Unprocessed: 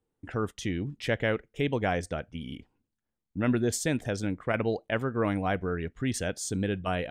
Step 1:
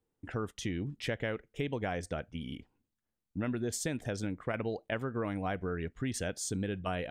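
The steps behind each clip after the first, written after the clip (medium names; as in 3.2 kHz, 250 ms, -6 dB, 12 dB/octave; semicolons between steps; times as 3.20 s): compression, threshold -28 dBFS, peak gain reduction 7.5 dB; trim -2 dB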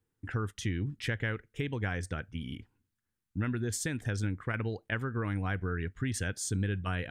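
fifteen-band graphic EQ 100 Hz +9 dB, 630 Hz -9 dB, 1.6 kHz +6 dB, 10 kHz +3 dB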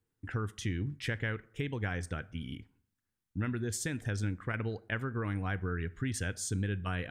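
plate-style reverb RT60 0.61 s, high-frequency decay 0.6×, DRR 18 dB; trim -1.5 dB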